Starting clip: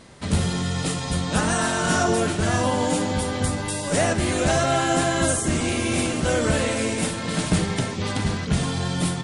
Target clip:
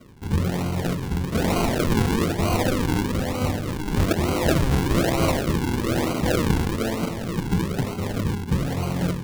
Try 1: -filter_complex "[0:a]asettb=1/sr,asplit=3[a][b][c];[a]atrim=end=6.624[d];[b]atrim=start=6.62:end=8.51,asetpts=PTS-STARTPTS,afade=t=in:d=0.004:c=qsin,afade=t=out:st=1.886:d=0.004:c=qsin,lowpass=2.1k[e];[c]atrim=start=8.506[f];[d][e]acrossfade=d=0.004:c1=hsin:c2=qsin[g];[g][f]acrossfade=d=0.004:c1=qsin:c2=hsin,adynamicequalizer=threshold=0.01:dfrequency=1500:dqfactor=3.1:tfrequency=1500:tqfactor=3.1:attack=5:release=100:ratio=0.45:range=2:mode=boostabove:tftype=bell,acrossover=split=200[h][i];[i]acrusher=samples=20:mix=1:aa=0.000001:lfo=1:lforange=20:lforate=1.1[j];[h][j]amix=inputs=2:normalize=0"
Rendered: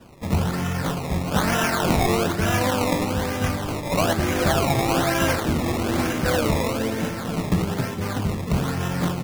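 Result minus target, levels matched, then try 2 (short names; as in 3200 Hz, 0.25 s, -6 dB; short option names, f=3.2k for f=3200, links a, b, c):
decimation with a swept rate: distortion -12 dB
-filter_complex "[0:a]asettb=1/sr,asplit=3[a][b][c];[a]atrim=end=6.624[d];[b]atrim=start=6.62:end=8.51,asetpts=PTS-STARTPTS,afade=t=in:d=0.004:c=qsin,afade=t=out:st=1.886:d=0.004:c=qsin,lowpass=2.1k[e];[c]atrim=start=8.506[f];[d][e]acrossfade=d=0.004:c1=hsin:c2=qsin[g];[g][f]acrossfade=d=0.004:c1=qsin:c2=hsin,adynamicequalizer=threshold=0.01:dfrequency=1500:dqfactor=3.1:tfrequency=1500:tqfactor=3.1:attack=5:release=100:ratio=0.45:range=2:mode=boostabove:tftype=bell,acrossover=split=200[h][i];[i]acrusher=samples=49:mix=1:aa=0.000001:lfo=1:lforange=49:lforate=1.1[j];[h][j]amix=inputs=2:normalize=0"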